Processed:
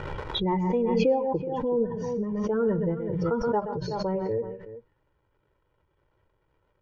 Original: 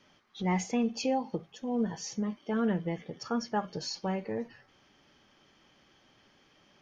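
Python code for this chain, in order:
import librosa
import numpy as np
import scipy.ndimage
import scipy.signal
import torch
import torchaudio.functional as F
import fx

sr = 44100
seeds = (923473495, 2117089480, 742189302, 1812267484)

p1 = fx.bin_expand(x, sr, power=1.5)
p2 = fx.dmg_crackle(p1, sr, seeds[0], per_s=300.0, level_db=-57.0)
p3 = scipy.signal.sosfilt(scipy.signal.butter(2, 1100.0, 'lowpass', fs=sr, output='sos'), p2)
p4 = fx.low_shelf(p3, sr, hz=270.0, db=7.5)
p5 = fx.hum_notches(p4, sr, base_hz=60, count=3)
p6 = p5 + 0.68 * np.pad(p5, (int(2.1 * sr / 1000.0), 0))[:len(p5)]
p7 = p6 + fx.echo_multitap(p6, sr, ms=(125, 170, 376), db=(-11.5, -19.5, -14.0), dry=0)
p8 = fx.pre_swell(p7, sr, db_per_s=25.0)
y = p8 * librosa.db_to_amplitude(4.0)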